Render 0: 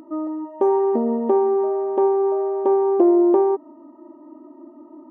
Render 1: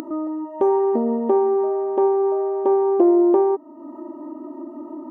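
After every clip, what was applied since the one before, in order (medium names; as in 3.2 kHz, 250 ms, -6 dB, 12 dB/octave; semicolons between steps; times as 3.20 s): upward compressor, threshold -24 dBFS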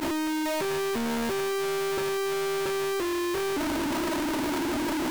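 one-bit comparator; peak limiter -28 dBFS, peak gain reduction 21 dB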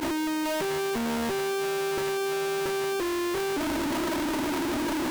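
band noise 150–630 Hz -51 dBFS; sliding maximum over 5 samples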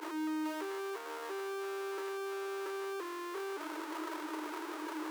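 rippled Chebyshev high-pass 300 Hz, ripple 9 dB; trim -6.5 dB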